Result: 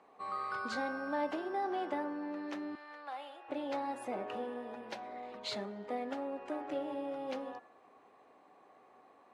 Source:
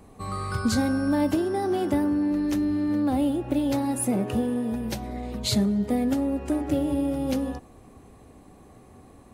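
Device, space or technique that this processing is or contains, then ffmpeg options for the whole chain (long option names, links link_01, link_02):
phone in a pocket: -filter_complex "[0:a]highpass=770,lowpass=3900,highshelf=frequency=2100:gain=-11.5,bandreject=frequency=114.9:width_type=h:width=4,bandreject=frequency=229.8:width_type=h:width=4,bandreject=frequency=344.7:width_type=h:width=4,bandreject=frequency=459.6:width_type=h:width=4,bandreject=frequency=574.5:width_type=h:width=4,bandreject=frequency=689.4:width_type=h:width=4,bandreject=frequency=804.3:width_type=h:width=4,bandreject=frequency=919.2:width_type=h:width=4,bandreject=frequency=1034.1:width_type=h:width=4,bandreject=frequency=1149:width_type=h:width=4,bandreject=frequency=1263.9:width_type=h:width=4,bandreject=frequency=1378.8:width_type=h:width=4,bandreject=frequency=1493.7:width_type=h:width=4,bandreject=frequency=1608.6:width_type=h:width=4,bandreject=frequency=1723.5:width_type=h:width=4,bandreject=frequency=1838.4:width_type=h:width=4,bandreject=frequency=1953.3:width_type=h:width=4,bandreject=frequency=2068.2:width_type=h:width=4,bandreject=frequency=2183.1:width_type=h:width=4,bandreject=frequency=2298:width_type=h:width=4,bandreject=frequency=2412.9:width_type=h:width=4,bandreject=frequency=2527.8:width_type=h:width=4,bandreject=frequency=2642.7:width_type=h:width=4,asettb=1/sr,asplit=3[link_01][link_02][link_03];[link_01]atrim=end=2.754[link_04];[link_02]atrim=start=2.75:end=3.49,asetpts=PTS-STARTPTS,afade=type=in:duration=0.004:curve=qsin,afade=type=out:start_time=0.736:duration=0.004:curve=qsin,highpass=1000[link_05];[link_03]atrim=start=3.486[link_06];[link_04][link_05]acrossfade=duration=0.004:curve1=hsin:curve2=qsin[link_07];[link_07][link_06]acrossfade=duration=0.004:curve1=qsin:curve2=hsin,highshelf=frequency=11000:gain=5"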